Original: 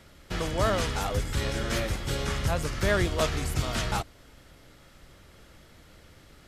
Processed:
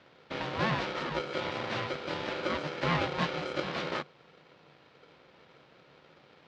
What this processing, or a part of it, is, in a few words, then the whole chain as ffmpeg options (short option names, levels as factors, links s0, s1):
ring modulator pedal into a guitar cabinet: -af "aeval=exprs='val(0)*sgn(sin(2*PI*450*n/s))':c=same,highpass=89,equalizer=f=100:t=q:w=4:g=-4,equalizer=f=150:t=q:w=4:g=8,equalizer=f=410:t=q:w=4:g=-6,lowpass=f=4300:w=0.5412,lowpass=f=4300:w=1.3066,volume=0.596"